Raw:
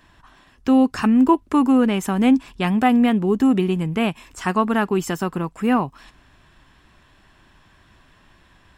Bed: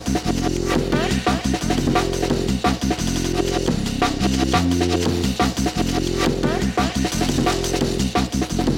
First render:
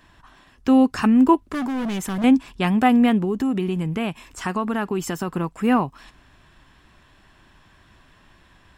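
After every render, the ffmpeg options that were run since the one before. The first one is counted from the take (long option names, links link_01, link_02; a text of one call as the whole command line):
ffmpeg -i in.wav -filter_complex "[0:a]asettb=1/sr,asplit=3[link_01][link_02][link_03];[link_01]atrim=end=1.444[link_04];[link_02]atrim=start=1.44:end=2.24,asetpts=PTS-STARTPTS,afade=type=in:duration=0.004:curve=qsin,afade=type=out:start_time=0.796:duration=0.004:curve=qsin,asoftclip=type=hard:threshold=-23.5dB[link_05];[link_03]atrim=start=2.236[link_06];[link_04][link_05]acrossfade=duration=0.004:curve1=hsin:curve2=qsin[link_07];[link_07][link_06]acrossfade=duration=0.004:curve1=qsin:curve2=hsin,asettb=1/sr,asplit=3[link_08][link_09][link_10];[link_08]atrim=end=3.244[link_11];[link_09]atrim=start=3.24:end=5.28,asetpts=PTS-STARTPTS,afade=type=in:duration=0.004:curve=qsin,afade=type=out:start_time=2.036:duration=0.004:curve=qsin,acompressor=threshold=-21dB:ratio=2.5:attack=3.2:release=140:knee=1:detection=peak[link_12];[link_10]atrim=start=5.276[link_13];[link_11][link_12]acrossfade=duration=0.004:curve1=hsin:curve2=qsin[link_14];[link_14][link_13]acrossfade=duration=0.004:curve1=qsin:curve2=hsin" out.wav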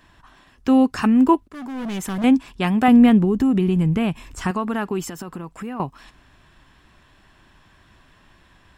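ffmpeg -i in.wav -filter_complex "[0:a]asettb=1/sr,asplit=3[link_01][link_02][link_03];[link_01]atrim=end=2.884[link_04];[link_02]atrim=start=2.88:end=4.51,asetpts=PTS-STARTPTS,afade=type=in:duration=0.004:curve=qsin,afade=type=out:start_time=1.626:duration=0.004:curve=qsin,lowshelf=frequency=200:gain=11.5[link_05];[link_03]atrim=start=4.506[link_06];[link_04][link_05]acrossfade=duration=0.004:curve1=hsin:curve2=qsin[link_07];[link_07][link_06]acrossfade=duration=0.004:curve1=qsin:curve2=hsin,asettb=1/sr,asplit=3[link_08][link_09][link_10];[link_08]atrim=end=5.024[link_11];[link_09]atrim=start=5.02:end=5.8,asetpts=PTS-STARTPTS,afade=type=in:duration=0.004:curve=qsin,afade=type=out:start_time=0.776:duration=0.004:curve=qsin,acompressor=threshold=-28dB:ratio=6:attack=3.2:release=140:knee=1:detection=peak[link_12];[link_10]atrim=start=5.796[link_13];[link_11][link_12]acrossfade=duration=0.004:curve1=hsin:curve2=qsin[link_14];[link_14][link_13]acrossfade=duration=0.004:curve1=qsin:curve2=hsin,asplit=2[link_15][link_16];[link_15]atrim=end=1.48,asetpts=PTS-STARTPTS,afade=type=out:start_time=1.476:duration=0.004:curve=hsin:silence=0.188365[link_17];[link_16]atrim=start=1.48,asetpts=PTS-STARTPTS,afade=type=in:duration=0.54:silence=0.188365[link_18];[link_17][link_18]concat=n=2:v=0:a=1" out.wav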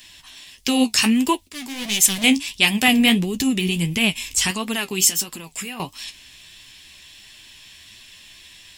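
ffmpeg -i in.wav -af "flanger=delay=7.6:depth=8.5:regen=45:speed=1.5:shape=triangular,aexciter=amount=8.5:drive=7.3:freq=2100" out.wav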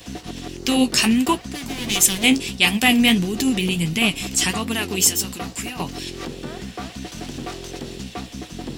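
ffmpeg -i in.wav -i bed.wav -filter_complex "[1:a]volume=-12.5dB[link_01];[0:a][link_01]amix=inputs=2:normalize=0" out.wav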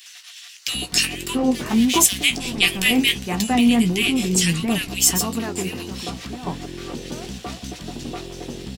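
ffmpeg -i in.wav -filter_complex "[0:a]asplit=2[link_01][link_02];[link_02]adelay=17,volume=-12.5dB[link_03];[link_01][link_03]amix=inputs=2:normalize=0,acrossover=split=1500[link_04][link_05];[link_04]adelay=670[link_06];[link_06][link_05]amix=inputs=2:normalize=0" out.wav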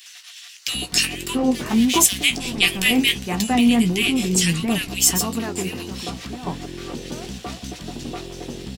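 ffmpeg -i in.wav -af anull out.wav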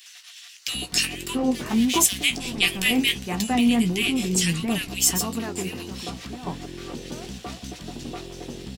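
ffmpeg -i in.wav -af "volume=-3.5dB" out.wav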